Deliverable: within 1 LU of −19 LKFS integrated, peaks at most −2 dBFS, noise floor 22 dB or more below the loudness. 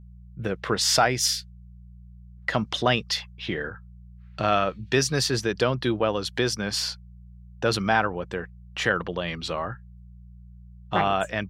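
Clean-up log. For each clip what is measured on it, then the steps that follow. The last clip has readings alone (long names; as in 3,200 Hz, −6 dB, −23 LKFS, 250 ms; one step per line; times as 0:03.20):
mains hum 60 Hz; hum harmonics up to 180 Hz; level of the hum −44 dBFS; integrated loudness −25.5 LKFS; sample peak −7.0 dBFS; target loudness −19.0 LKFS
→ hum removal 60 Hz, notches 3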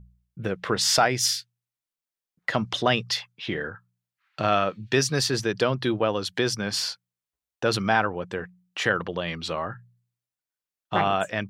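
mains hum none found; integrated loudness −25.5 LKFS; sample peak −7.0 dBFS; target loudness −19.0 LKFS
→ level +6.5 dB
brickwall limiter −2 dBFS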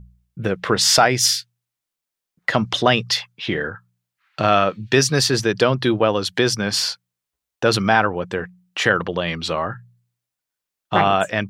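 integrated loudness −19.0 LKFS; sample peak −2.0 dBFS; background noise floor −85 dBFS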